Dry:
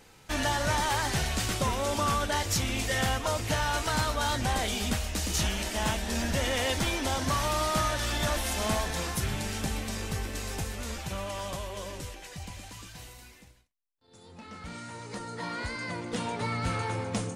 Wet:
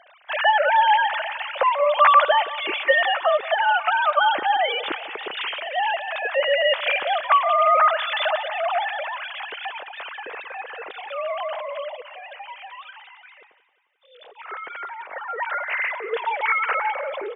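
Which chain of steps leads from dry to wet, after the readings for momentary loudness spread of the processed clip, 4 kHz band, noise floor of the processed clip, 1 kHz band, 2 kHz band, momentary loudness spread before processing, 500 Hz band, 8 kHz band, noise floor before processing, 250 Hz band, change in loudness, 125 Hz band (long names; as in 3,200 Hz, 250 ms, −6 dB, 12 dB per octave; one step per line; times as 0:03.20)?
17 LU, +5.0 dB, −53 dBFS, +12.5 dB, +10.5 dB, 14 LU, +10.0 dB, below −40 dB, −56 dBFS, −13.5 dB, +9.0 dB, below −35 dB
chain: three sine waves on the formant tracks
high-pass filter 230 Hz 6 dB per octave
on a send: repeating echo 177 ms, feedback 59%, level −17 dB
on the sum: level +8 dB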